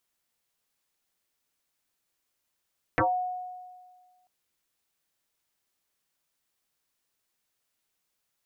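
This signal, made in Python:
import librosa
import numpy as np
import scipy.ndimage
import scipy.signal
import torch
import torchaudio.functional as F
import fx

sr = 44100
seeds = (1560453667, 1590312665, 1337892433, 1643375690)

y = fx.fm2(sr, length_s=1.29, level_db=-19, carrier_hz=730.0, ratio=0.28, index=8.3, index_s=0.21, decay_s=1.66, shape='exponential')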